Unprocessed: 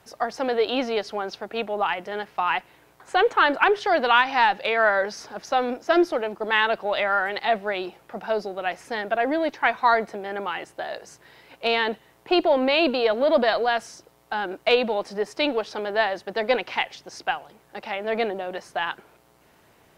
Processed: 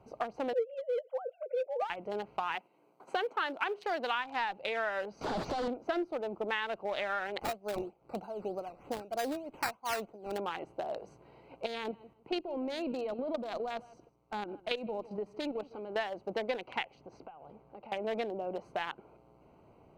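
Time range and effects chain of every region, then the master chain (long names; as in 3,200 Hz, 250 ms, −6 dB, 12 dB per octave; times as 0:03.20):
0:00.53–0:01.90: three sine waves on the formant tracks + treble cut that deepens with the level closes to 1,600 Hz, closed at −15 dBFS + parametric band 510 Hz +13.5 dB 0.22 octaves
0:02.55–0:04.15: high-pass filter 180 Hz 24 dB per octave + high-shelf EQ 5,700 Hz +12 dB + noise gate −51 dBFS, range −7 dB
0:05.21–0:05.68: sign of each sample alone + low-pass filter 5,600 Hz 24 dB per octave + highs frequency-modulated by the lows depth 0.33 ms
0:07.41–0:10.38: sample-and-hold swept by an LFO 11×, swing 60% 3.2 Hz + amplitude tremolo 2.7 Hz, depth 84%
0:11.66–0:15.96: parametric band 650 Hz −5 dB 1.6 octaves + output level in coarse steps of 10 dB + repeating echo 158 ms, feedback 21%, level −20.5 dB
0:17.01–0:17.92: low-pass filter 3,500 Hz 6 dB per octave + notch filter 340 Hz, Q 11 + downward compressor 16 to 1, threshold −41 dBFS
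whole clip: adaptive Wiener filter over 25 samples; parametric band 2,300 Hz +2 dB; downward compressor 4 to 1, threshold −33 dBFS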